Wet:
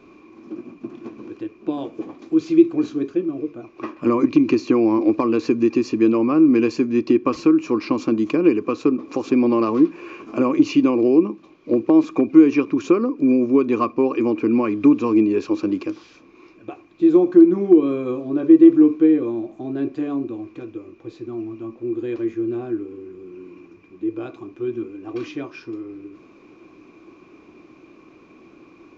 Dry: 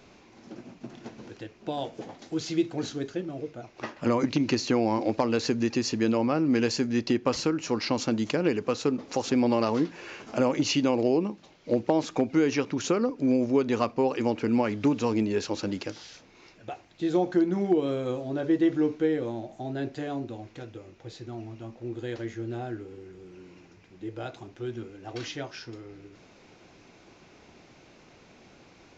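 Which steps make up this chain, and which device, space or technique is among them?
inside a helmet (high-shelf EQ 3,700 Hz −7 dB; hollow resonant body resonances 320/1,100/2,400 Hz, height 17 dB, ringing for 30 ms)
level −3 dB

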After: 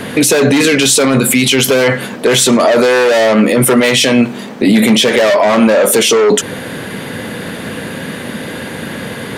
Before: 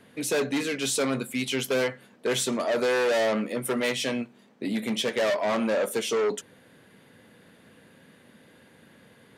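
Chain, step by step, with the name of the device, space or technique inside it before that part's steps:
loud club master (downward compressor 2.5 to 1, threshold −28 dBFS, peak gain reduction 6 dB; hard clipping −21 dBFS, distortion −33 dB; boost into a limiter +32.5 dB)
level −1 dB

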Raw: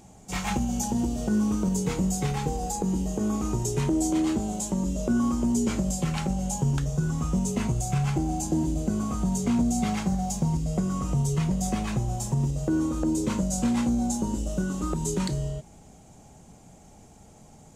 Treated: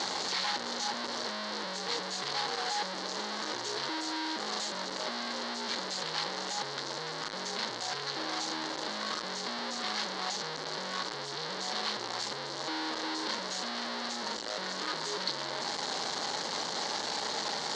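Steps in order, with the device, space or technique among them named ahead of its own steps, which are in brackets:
home computer beeper (sign of each sample alone; loudspeaker in its box 630–5,100 Hz, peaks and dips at 690 Hz −7 dB, 1,300 Hz −4 dB, 2,500 Hz −10 dB, 4,300 Hz +9 dB)

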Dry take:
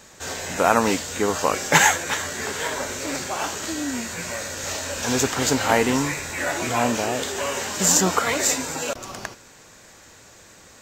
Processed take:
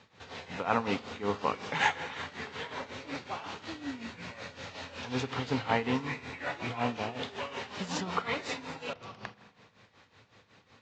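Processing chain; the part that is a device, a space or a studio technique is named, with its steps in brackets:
combo amplifier with spring reverb and tremolo (spring reverb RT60 1.5 s, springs 39 ms, chirp 50 ms, DRR 10.5 dB; amplitude tremolo 5.4 Hz, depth 75%; loudspeaker in its box 89–4,100 Hz, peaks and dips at 110 Hz +6 dB, 340 Hz −6 dB, 610 Hz −6 dB, 1,600 Hz −5 dB)
level −6 dB

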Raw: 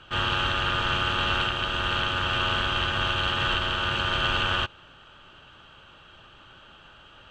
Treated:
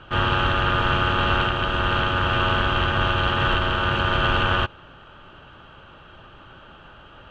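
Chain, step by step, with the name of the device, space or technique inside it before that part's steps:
through cloth (low-pass filter 8,800 Hz 12 dB per octave; high-shelf EQ 2,900 Hz −16 dB)
level +8 dB

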